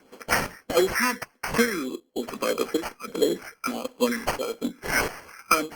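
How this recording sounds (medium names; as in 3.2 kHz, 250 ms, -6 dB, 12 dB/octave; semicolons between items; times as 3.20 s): phasing stages 6, 1.6 Hz, lowest notch 590–2700 Hz; aliases and images of a low sample rate 3.7 kHz, jitter 0%; chopped level 1.3 Hz, depth 60%, duty 60%; Opus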